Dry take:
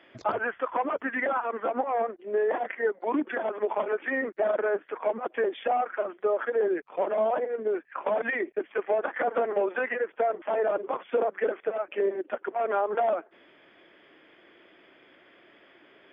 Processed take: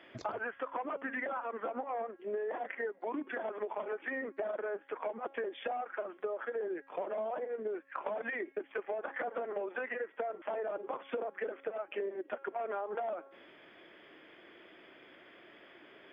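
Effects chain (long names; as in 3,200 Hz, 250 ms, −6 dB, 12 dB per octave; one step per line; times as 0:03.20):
hum removal 273.8 Hz, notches 33
downward compressor 6 to 1, threshold −35 dBFS, peak gain reduction 13 dB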